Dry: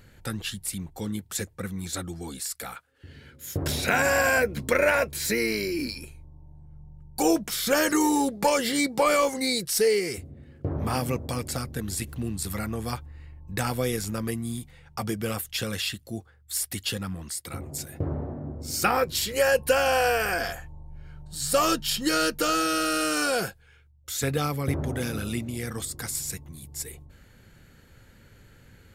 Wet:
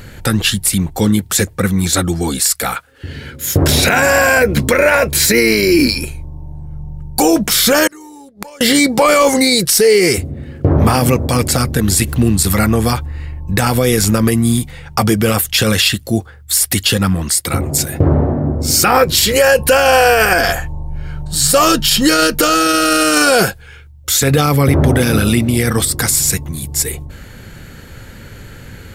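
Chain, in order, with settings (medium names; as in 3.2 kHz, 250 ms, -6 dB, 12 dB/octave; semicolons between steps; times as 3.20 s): 7.87–8.61 s: inverted gate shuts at -23 dBFS, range -33 dB; 24.57–25.98 s: band-stop 6.8 kHz, Q 5.7; loudness maximiser +20 dB; trim -1 dB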